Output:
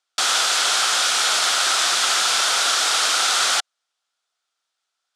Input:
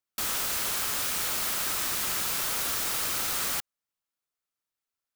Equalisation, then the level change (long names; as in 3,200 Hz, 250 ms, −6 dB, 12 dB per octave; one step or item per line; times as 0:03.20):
loudspeaker in its box 460–9,000 Hz, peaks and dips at 730 Hz +7 dB, 1,400 Hz +8 dB, 3,400 Hz +5 dB
parametric band 4,700 Hz +5.5 dB 1.3 octaves
+9.0 dB